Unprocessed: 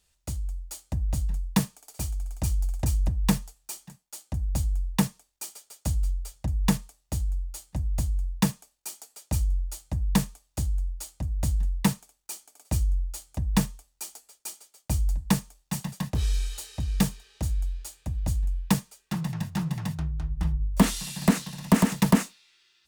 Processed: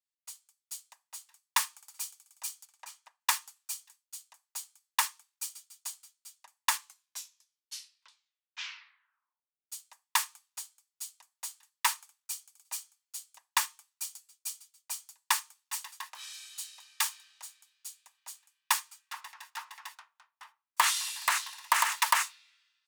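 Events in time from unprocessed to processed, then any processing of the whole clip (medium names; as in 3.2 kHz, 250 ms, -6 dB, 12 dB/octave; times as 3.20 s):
2.65–3.21 s: low-pass 3.9 kHz 6 dB/octave
6.70 s: tape stop 2.97 s
whole clip: Chebyshev high-pass 960 Hz, order 4; three bands expanded up and down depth 70%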